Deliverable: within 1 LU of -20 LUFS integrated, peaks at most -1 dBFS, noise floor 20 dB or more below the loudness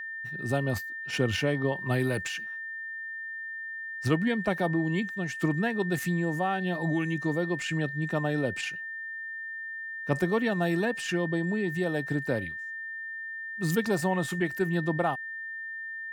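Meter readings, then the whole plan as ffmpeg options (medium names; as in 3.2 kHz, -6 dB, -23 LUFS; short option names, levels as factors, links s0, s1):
steady tone 1.8 kHz; tone level -35 dBFS; loudness -30.0 LUFS; peak level -13.0 dBFS; loudness target -20.0 LUFS
-> -af "bandreject=f=1800:w=30"
-af "volume=3.16"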